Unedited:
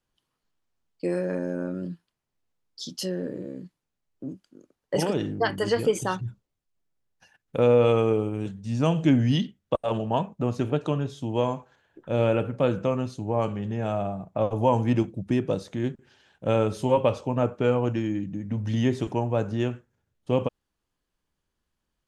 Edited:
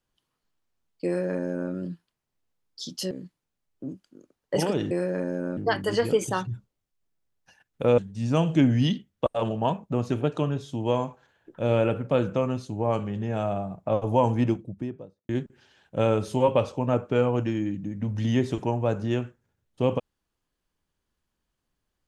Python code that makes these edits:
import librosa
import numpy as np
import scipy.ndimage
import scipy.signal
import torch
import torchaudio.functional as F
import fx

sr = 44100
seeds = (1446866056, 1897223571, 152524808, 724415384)

y = fx.studio_fade_out(x, sr, start_s=14.76, length_s=1.02)
y = fx.edit(y, sr, fx.duplicate(start_s=1.06, length_s=0.66, to_s=5.31),
    fx.cut(start_s=3.11, length_s=0.4),
    fx.cut(start_s=7.72, length_s=0.75), tone=tone)